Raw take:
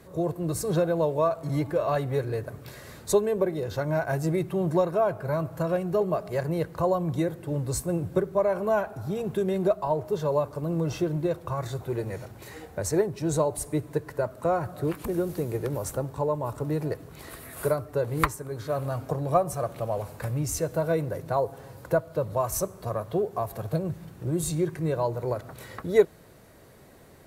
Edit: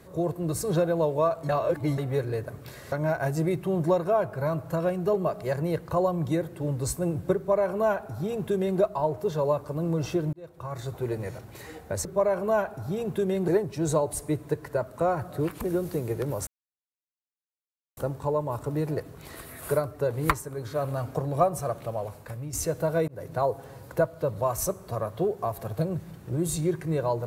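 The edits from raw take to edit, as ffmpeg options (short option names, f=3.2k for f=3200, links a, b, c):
-filter_complex "[0:a]asplit=10[a][b][c][d][e][f][g][h][i][j];[a]atrim=end=1.492[k];[b]atrim=start=1.488:end=1.982,asetpts=PTS-STARTPTS,areverse[l];[c]atrim=start=1.978:end=2.922[m];[d]atrim=start=3.788:end=11.2,asetpts=PTS-STARTPTS,afade=t=out:st=7.408:d=0.004:c=hsin[n];[e]atrim=start=11.2:end=12.922,asetpts=PTS-STARTPTS,afade=t=in:d=0.64[o];[f]atrim=start=8.238:end=9.672[p];[g]atrim=start=12.918:end=15.91,asetpts=PTS-STARTPTS,afade=t=out:st=2.988:d=0.004:c=hsin,apad=pad_dur=1.5[q];[h]atrim=start=15.91:end=20.47,asetpts=PTS-STARTPTS,afade=t=in:d=0.004:c=hsin,afade=t=out:st=3.67:d=0.89:silence=0.334965[r];[i]atrim=start=20.47:end=21.02,asetpts=PTS-STARTPTS,afade=t=in:d=0.004:c=hsin:silence=0.334965,afade=t=out:st=0.546:d=0.004:c=hsin[s];[j]atrim=start=21.02,asetpts=PTS-STARTPTS,afade=t=in:d=0.34:c=qsin[t];[k][l]acrossfade=d=0.004:c1=hsin:c2=hsin[u];[u][m]acrossfade=d=0.004:c1=hsin:c2=hsin[v];[n][o]concat=n=2:v=0:a=1[w];[v][w]acrossfade=d=0.004:c1=hsin:c2=hsin[x];[x][p]acrossfade=d=0.004:c1=hsin:c2=hsin[y];[q][r][s][t]concat=n=4:v=0:a=1[z];[y][z]acrossfade=d=0.004:c1=hsin:c2=hsin"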